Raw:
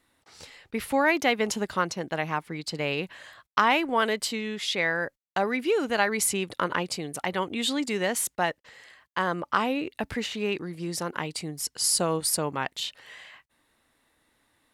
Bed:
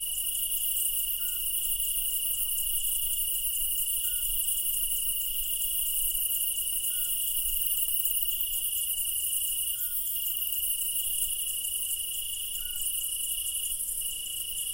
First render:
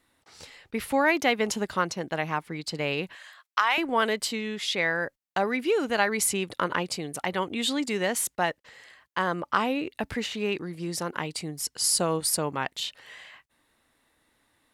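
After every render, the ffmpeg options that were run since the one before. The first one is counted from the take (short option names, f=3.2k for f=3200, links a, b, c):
-filter_complex "[0:a]asettb=1/sr,asplit=3[a][b][c];[a]atrim=end=3.154[d];[b]atrim=start=3.15:end=3.78,asetpts=PTS-STARTPTS,afade=t=in:d=0.004:c=qsin,afade=t=out:st=0.626:d=0.004:c=qsin,highpass=960[e];[c]atrim=start=3.776[f];[d][e]acrossfade=d=0.004:c1=hsin:c2=qsin[g];[g][f]acrossfade=d=0.004:c1=qsin:c2=hsin"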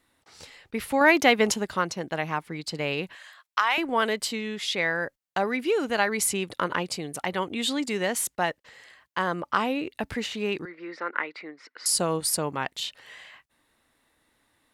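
-filter_complex "[0:a]asettb=1/sr,asplit=3[a][b][c];[a]atrim=end=10.654[d];[b]atrim=start=10.65:end=11.86,asetpts=PTS-STARTPTS,afade=t=in:d=0.004:c=qsin,afade=t=out:st=1.206:d=0.004:c=qsin,highpass=f=320:w=0.5412,highpass=f=320:w=1.3066,equalizer=f=400:t=q:w=4:g=-4,equalizer=f=740:t=q:w=4:g=-7,equalizer=f=1.4k:t=q:w=4:g=8,equalizer=f=2k:t=q:w=4:g=9,equalizer=f=3.1k:t=q:w=4:g=-10,lowpass=f=3.3k:w=0.5412,lowpass=f=3.3k:w=1.3066[e];[c]atrim=start=11.856[f];[d][e]acrossfade=d=0.004:c1=hsin:c2=qsin[g];[g][f]acrossfade=d=0.004:c1=qsin:c2=hsin,asplit=3[h][i][j];[h]atrim=end=1.012[k];[i]atrim=start=1.008:end=1.542,asetpts=PTS-STARTPTS,volume=4.5dB[l];[j]atrim=start=1.538[m];[k][l]acrossfade=d=0.004:c1=hsin:c2=hsin[n];[n][m]acrossfade=d=0.004:c1=hsin:c2=hsin"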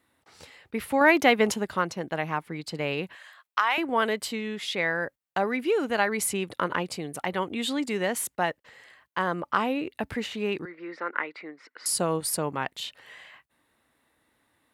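-af "highpass=57,equalizer=f=5.7k:t=o:w=1.6:g=-5.5"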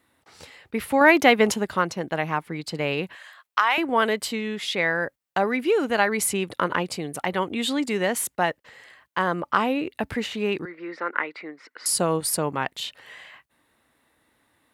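-af "volume=3.5dB"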